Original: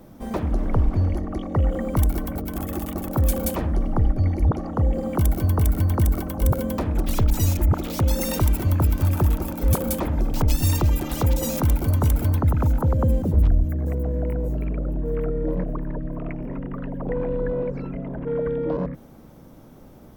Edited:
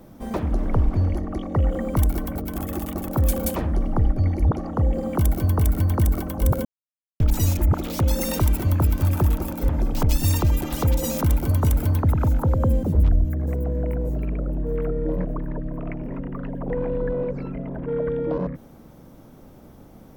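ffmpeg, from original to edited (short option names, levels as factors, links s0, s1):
-filter_complex "[0:a]asplit=4[s0][s1][s2][s3];[s0]atrim=end=6.65,asetpts=PTS-STARTPTS,afade=t=out:st=6.646:d=0.004:c=hsin[s4];[s1]atrim=start=6.65:end=7.2,asetpts=PTS-STARTPTS,volume=0[s5];[s2]atrim=start=7.2:end=9.692,asetpts=PTS-STARTPTS,afade=t=in:d=0.004:c=hsin[s6];[s3]atrim=start=10.078[s7];[s4][s5][s6]concat=n=3:v=0:a=1[s8];[s8][s7]acrossfade=d=0.004:c1=hsin:c2=hsin"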